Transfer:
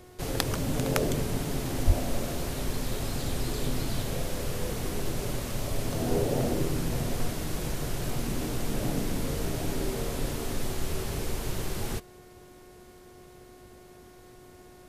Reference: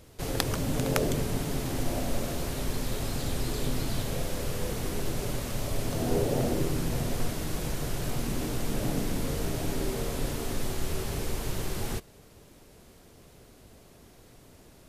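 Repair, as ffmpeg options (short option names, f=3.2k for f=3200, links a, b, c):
-filter_complex "[0:a]bandreject=f=363:t=h:w=4,bandreject=f=726:t=h:w=4,bandreject=f=1.089k:t=h:w=4,bandreject=f=1.452k:t=h:w=4,bandreject=f=1.815k:t=h:w=4,bandreject=f=2.178k:t=h:w=4,asplit=3[a][b][c];[a]afade=t=out:st=1.86:d=0.02[d];[b]highpass=f=140:w=0.5412,highpass=f=140:w=1.3066,afade=t=in:st=1.86:d=0.02,afade=t=out:st=1.98:d=0.02[e];[c]afade=t=in:st=1.98:d=0.02[f];[d][e][f]amix=inputs=3:normalize=0"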